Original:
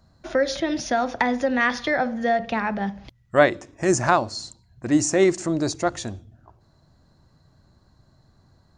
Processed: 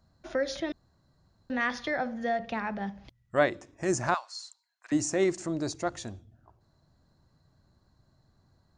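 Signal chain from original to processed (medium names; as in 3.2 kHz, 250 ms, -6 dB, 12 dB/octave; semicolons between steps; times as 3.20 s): 0.72–1.50 s: room tone; 4.14–4.92 s: high-pass 1 kHz 24 dB/octave; trim -8 dB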